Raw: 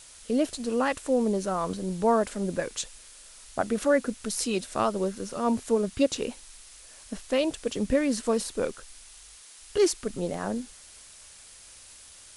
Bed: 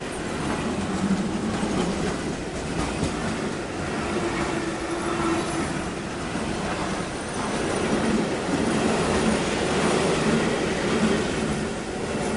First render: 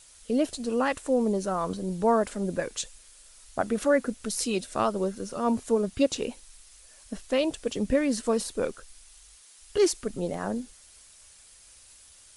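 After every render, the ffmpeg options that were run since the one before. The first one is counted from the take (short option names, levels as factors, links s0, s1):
-af "afftdn=nr=6:nf=-50"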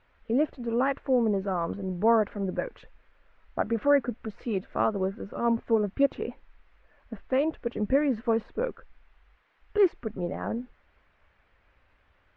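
-af "lowpass=f=2100:w=0.5412,lowpass=f=2100:w=1.3066"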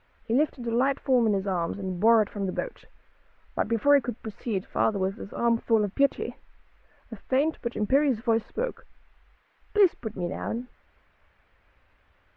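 -af "volume=1.19"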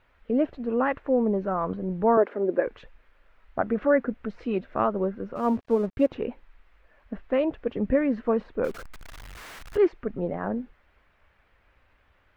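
-filter_complex "[0:a]asettb=1/sr,asplit=3[s0][s1][s2];[s0]atrim=end=2.174[s3];[s1]atrim=start=2.17:end=2.67,asetpts=PTS-STARTPTS,afade=t=in:d=0.004:c=qsin,afade=t=out:st=0.496:d=0.004:c=qsin,highpass=f=370:t=q:w=2.4[s4];[s2]atrim=start=2.666[s5];[s3][s4]acrossfade=d=0.004:c1=hsin:c2=qsin[s6];[s6][s5]acrossfade=d=0.004:c1=qsin:c2=hsin,asplit=3[s7][s8][s9];[s7]afade=t=out:st=5.35:d=0.02[s10];[s8]aeval=exprs='sgn(val(0))*max(abs(val(0))-0.00376,0)':c=same,afade=t=in:st=5.35:d=0.02,afade=t=out:st=6.08:d=0.02[s11];[s9]afade=t=in:st=6.08:d=0.02[s12];[s10][s11][s12]amix=inputs=3:normalize=0,asettb=1/sr,asplit=3[s13][s14][s15];[s13]atrim=end=8.644[s16];[s14]atrim=start=8.64:end=9.77,asetpts=PTS-STARTPTS,afade=t=in:d=0.004:c=qsin,afade=t=out:st=1.126:d=0.004:c=qsin,aeval=exprs='val(0)+0.5*0.0133*sgn(val(0))':c=same[s17];[s15]atrim=start=9.766[s18];[s16][s17]acrossfade=d=0.004:c1=hsin:c2=qsin[s19];[s19][s18]acrossfade=d=0.004:c1=qsin:c2=hsin"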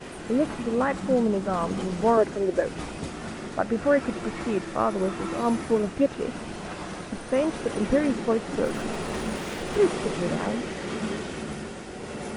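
-filter_complex "[1:a]volume=0.376[s0];[0:a][s0]amix=inputs=2:normalize=0"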